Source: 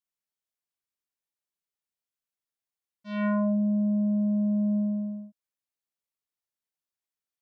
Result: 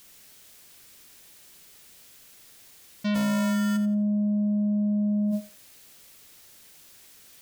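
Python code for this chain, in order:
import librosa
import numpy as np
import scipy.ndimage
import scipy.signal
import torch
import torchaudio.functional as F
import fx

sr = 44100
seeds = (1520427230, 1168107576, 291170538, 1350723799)

y = fx.peak_eq(x, sr, hz=970.0, db=-6.0, octaves=1.4)
y = fx.sample_hold(y, sr, seeds[0], rate_hz=1600.0, jitter_pct=0, at=(3.14, 3.76), fade=0.02)
y = fx.echo_thinned(y, sr, ms=87, feedback_pct=25, hz=630.0, wet_db=-11.0)
y = fx.env_flatten(y, sr, amount_pct=100)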